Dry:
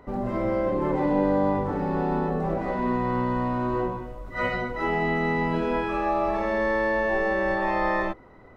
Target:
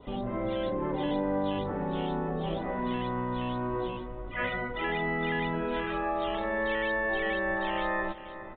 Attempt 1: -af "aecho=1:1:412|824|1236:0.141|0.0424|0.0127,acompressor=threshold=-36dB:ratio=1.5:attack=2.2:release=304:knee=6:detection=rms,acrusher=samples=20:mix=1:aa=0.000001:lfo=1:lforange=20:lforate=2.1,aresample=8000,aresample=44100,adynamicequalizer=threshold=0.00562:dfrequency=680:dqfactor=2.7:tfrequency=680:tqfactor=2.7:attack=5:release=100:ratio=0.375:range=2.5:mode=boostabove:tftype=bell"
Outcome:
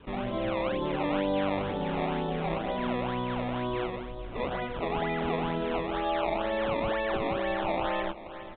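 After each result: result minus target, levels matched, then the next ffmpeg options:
sample-and-hold swept by an LFO: distortion +8 dB; 2,000 Hz band −5.0 dB
-af "aecho=1:1:412|824|1236:0.141|0.0424|0.0127,acompressor=threshold=-36dB:ratio=1.5:attack=2.2:release=304:knee=6:detection=rms,acrusher=samples=8:mix=1:aa=0.000001:lfo=1:lforange=8:lforate=2.1,aresample=8000,aresample=44100,adynamicequalizer=threshold=0.00562:dfrequency=680:dqfactor=2.7:tfrequency=680:tqfactor=2.7:attack=5:release=100:ratio=0.375:range=2.5:mode=boostabove:tftype=bell"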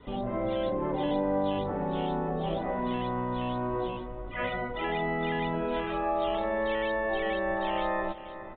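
2,000 Hz band −4.0 dB
-af "aecho=1:1:412|824|1236:0.141|0.0424|0.0127,acompressor=threshold=-36dB:ratio=1.5:attack=2.2:release=304:knee=6:detection=rms,acrusher=samples=8:mix=1:aa=0.000001:lfo=1:lforange=8:lforate=2.1,aresample=8000,aresample=44100,adynamicequalizer=threshold=0.00562:dfrequency=1700:dqfactor=2.7:tfrequency=1700:tqfactor=2.7:attack=5:release=100:ratio=0.375:range=2.5:mode=boostabove:tftype=bell"

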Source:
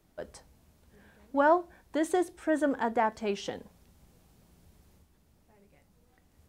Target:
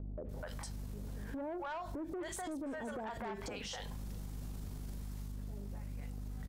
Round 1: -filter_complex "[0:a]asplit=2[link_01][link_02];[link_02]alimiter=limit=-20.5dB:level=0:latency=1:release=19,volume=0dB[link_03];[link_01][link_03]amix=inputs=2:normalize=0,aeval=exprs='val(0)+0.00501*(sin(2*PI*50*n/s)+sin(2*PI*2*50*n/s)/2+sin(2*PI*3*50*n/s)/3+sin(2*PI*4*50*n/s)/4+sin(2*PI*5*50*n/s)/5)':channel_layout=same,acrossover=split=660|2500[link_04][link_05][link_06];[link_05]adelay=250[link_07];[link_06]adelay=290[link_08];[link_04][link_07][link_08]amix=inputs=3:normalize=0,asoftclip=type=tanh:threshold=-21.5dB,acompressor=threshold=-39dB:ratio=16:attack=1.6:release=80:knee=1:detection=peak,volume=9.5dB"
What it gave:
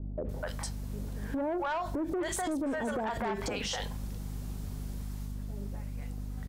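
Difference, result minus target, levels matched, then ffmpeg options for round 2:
downward compressor: peak gain reduction −9 dB
-filter_complex "[0:a]asplit=2[link_01][link_02];[link_02]alimiter=limit=-20.5dB:level=0:latency=1:release=19,volume=0dB[link_03];[link_01][link_03]amix=inputs=2:normalize=0,aeval=exprs='val(0)+0.00501*(sin(2*PI*50*n/s)+sin(2*PI*2*50*n/s)/2+sin(2*PI*3*50*n/s)/3+sin(2*PI*4*50*n/s)/4+sin(2*PI*5*50*n/s)/5)':channel_layout=same,acrossover=split=660|2500[link_04][link_05][link_06];[link_05]adelay=250[link_07];[link_06]adelay=290[link_08];[link_04][link_07][link_08]amix=inputs=3:normalize=0,asoftclip=type=tanh:threshold=-21.5dB,acompressor=threshold=-48.5dB:ratio=16:attack=1.6:release=80:knee=1:detection=peak,volume=9.5dB"

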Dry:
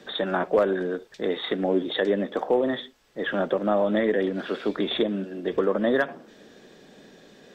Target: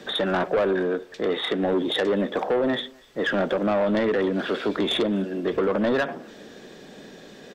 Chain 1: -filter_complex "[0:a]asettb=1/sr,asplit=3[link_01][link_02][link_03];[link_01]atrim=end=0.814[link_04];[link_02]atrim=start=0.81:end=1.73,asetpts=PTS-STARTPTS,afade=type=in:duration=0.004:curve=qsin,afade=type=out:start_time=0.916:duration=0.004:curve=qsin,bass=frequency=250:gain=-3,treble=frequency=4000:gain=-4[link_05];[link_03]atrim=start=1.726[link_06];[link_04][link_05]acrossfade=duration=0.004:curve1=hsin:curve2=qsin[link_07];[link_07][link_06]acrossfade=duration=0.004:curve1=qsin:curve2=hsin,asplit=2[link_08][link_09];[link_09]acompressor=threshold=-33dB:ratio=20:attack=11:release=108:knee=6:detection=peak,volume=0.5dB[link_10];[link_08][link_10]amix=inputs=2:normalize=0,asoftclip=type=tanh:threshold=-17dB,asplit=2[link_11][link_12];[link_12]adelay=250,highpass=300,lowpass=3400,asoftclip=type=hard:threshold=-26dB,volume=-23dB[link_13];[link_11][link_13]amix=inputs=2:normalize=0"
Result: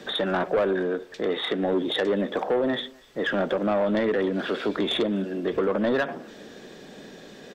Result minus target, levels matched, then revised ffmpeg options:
downward compressor: peak gain reduction +8.5 dB
-filter_complex "[0:a]asettb=1/sr,asplit=3[link_01][link_02][link_03];[link_01]atrim=end=0.814[link_04];[link_02]atrim=start=0.81:end=1.73,asetpts=PTS-STARTPTS,afade=type=in:duration=0.004:curve=qsin,afade=type=out:start_time=0.916:duration=0.004:curve=qsin,bass=frequency=250:gain=-3,treble=frequency=4000:gain=-4[link_05];[link_03]atrim=start=1.726[link_06];[link_04][link_05]acrossfade=duration=0.004:curve1=hsin:curve2=qsin[link_07];[link_07][link_06]acrossfade=duration=0.004:curve1=qsin:curve2=hsin,asplit=2[link_08][link_09];[link_09]acompressor=threshold=-24dB:ratio=20:attack=11:release=108:knee=6:detection=peak,volume=0.5dB[link_10];[link_08][link_10]amix=inputs=2:normalize=0,asoftclip=type=tanh:threshold=-17dB,asplit=2[link_11][link_12];[link_12]adelay=250,highpass=300,lowpass=3400,asoftclip=type=hard:threshold=-26dB,volume=-23dB[link_13];[link_11][link_13]amix=inputs=2:normalize=0"

